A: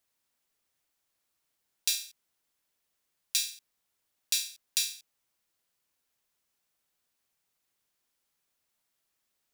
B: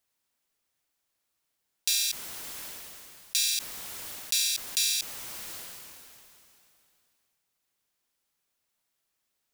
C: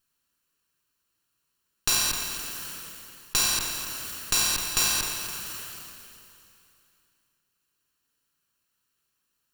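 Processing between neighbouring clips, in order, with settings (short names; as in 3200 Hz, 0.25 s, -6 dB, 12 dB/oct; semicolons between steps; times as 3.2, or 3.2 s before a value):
sustainer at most 21 dB/s
minimum comb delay 0.71 ms; spring tank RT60 1.3 s, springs 54 ms, chirp 65 ms, DRR 6 dB; lo-fi delay 0.259 s, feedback 55%, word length 7-bit, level -8.5 dB; gain +4 dB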